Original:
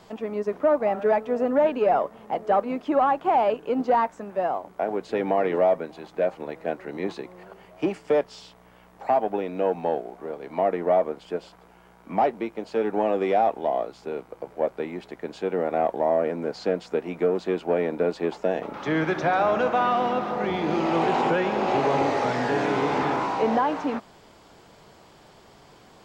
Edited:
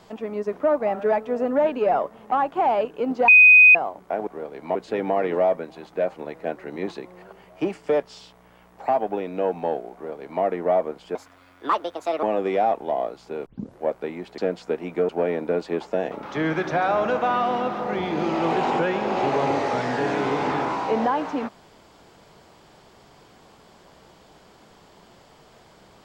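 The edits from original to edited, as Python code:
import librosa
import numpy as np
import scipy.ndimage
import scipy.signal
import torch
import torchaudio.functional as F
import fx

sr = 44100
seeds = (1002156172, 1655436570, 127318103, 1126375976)

y = fx.edit(x, sr, fx.cut(start_s=2.32, length_s=0.69),
    fx.bleep(start_s=3.97, length_s=0.47, hz=2500.0, db=-7.5),
    fx.duplicate(start_s=10.15, length_s=0.48, to_s=4.96),
    fx.speed_span(start_s=11.36, length_s=1.63, speed=1.51),
    fx.tape_start(start_s=14.22, length_s=0.36),
    fx.cut(start_s=15.14, length_s=1.48),
    fx.cut(start_s=17.33, length_s=0.27), tone=tone)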